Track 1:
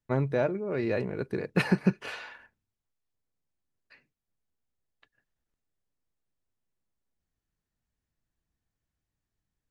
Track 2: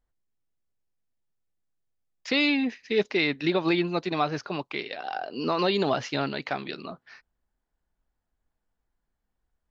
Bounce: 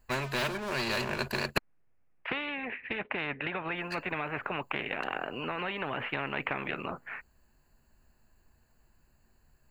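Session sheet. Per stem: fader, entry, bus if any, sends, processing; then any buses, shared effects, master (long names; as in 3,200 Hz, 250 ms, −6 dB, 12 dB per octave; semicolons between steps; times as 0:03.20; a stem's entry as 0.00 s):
−4.0 dB, 0.00 s, muted 0:01.58–0:03.76, no send, EQ curve with evenly spaced ripples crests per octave 1.4, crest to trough 18 dB; leveller curve on the samples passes 1
−5.5 dB, 0.00 s, no send, Butterworth low-pass 2,600 Hz 48 dB per octave; downward compressor, threshold −28 dBFS, peak gain reduction 9.5 dB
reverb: not used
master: every bin compressed towards the loudest bin 4 to 1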